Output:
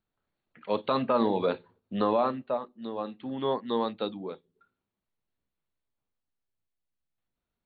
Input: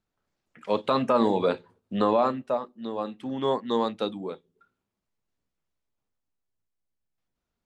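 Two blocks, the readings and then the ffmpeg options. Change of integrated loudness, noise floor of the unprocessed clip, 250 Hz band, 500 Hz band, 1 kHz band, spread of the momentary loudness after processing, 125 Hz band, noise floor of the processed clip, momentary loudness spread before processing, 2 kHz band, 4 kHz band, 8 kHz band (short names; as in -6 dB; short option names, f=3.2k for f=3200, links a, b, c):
-3.0 dB, -84 dBFS, -3.0 dB, -3.0 dB, -3.0 dB, 13 LU, -3.0 dB, under -85 dBFS, 13 LU, -3.0 dB, -3.0 dB, n/a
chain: -af "volume=-3dB" -ar 32000 -c:a ac3 -b:a 48k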